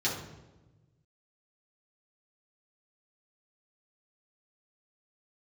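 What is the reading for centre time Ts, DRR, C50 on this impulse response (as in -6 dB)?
42 ms, -7.5 dB, 4.5 dB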